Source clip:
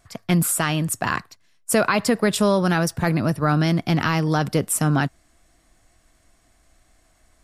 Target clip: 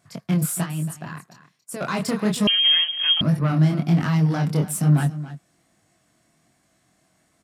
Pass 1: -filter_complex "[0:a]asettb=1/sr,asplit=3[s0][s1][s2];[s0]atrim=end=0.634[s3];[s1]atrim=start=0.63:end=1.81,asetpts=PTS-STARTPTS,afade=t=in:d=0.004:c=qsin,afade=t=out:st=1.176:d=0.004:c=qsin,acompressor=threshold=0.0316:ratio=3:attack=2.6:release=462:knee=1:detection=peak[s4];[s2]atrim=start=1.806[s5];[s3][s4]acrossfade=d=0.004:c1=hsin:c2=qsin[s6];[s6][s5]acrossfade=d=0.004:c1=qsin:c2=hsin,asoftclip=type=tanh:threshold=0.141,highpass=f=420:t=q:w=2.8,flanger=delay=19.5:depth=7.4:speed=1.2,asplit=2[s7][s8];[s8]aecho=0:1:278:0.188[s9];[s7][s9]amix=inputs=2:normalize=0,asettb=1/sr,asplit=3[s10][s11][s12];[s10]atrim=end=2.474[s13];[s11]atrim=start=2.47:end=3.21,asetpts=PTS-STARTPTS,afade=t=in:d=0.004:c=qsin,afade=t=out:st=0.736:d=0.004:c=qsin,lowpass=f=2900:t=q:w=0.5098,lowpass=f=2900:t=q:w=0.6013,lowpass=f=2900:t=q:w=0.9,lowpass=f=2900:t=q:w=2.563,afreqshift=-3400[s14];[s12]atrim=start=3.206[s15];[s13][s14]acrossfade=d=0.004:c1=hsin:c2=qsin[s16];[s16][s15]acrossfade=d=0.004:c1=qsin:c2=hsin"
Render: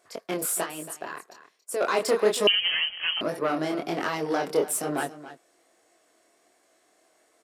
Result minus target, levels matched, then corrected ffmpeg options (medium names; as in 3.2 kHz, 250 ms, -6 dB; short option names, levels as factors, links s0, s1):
125 Hz band -18.5 dB
-filter_complex "[0:a]asettb=1/sr,asplit=3[s0][s1][s2];[s0]atrim=end=0.634[s3];[s1]atrim=start=0.63:end=1.81,asetpts=PTS-STARTPTS,afade=t=in:d=0.004:c=qsin,afade=t=out:st=1.176:d=0.004:c=qsin,acompressor=threshold=0.0316:ratio=3:attack=2.6:release=462:knee=1:detection=peak[s4];[s2]atrim=start=1.806[s5];[s3][s4]acrossfade=d=0.004:c1=hsin:c2=qsin[s6];[s6][s5]acrossfade=d=0.004:c1=qsin:c2=hsin,asoftclip=type=tanh:threshold=0.141,highpass=f=150:t=q:w=2.8,flanger=delay=19.5:depth=7.4:speed=1.2,asplit=2[s7][s8];[s8]aecho=0:1:278:0.188[s9];[s7][s9]amix=inputs=2:normalize=0,asettb=1/sr,asplit=3[s10][s11][s12];[s10]atrim=end=2.474[s13];[s11]atrim=start=2.47:end=3.21,asetpts=PTS-STARTPTS,afade=t=in:d=0.004:c=qsin,afade=t=out:st=0.736:d=0.004:c=qsin,lowpass=f=2900:t=q:w=0.5098,lowpass=f=2900:t=q:w=0.6013,lowpass=f=2900:t=q:w=0.9,lowpass=f=2900:t=q:w=2.563,afreqshift=-3400[s14];[s12]atrim=start=3.206[s15];[s13][s14]acrossfade=d=0.004:c1=hsin:c2=qsin[s16];[s16][s15]acrossfade=d=0.004:c1=qsin:c2=hsin"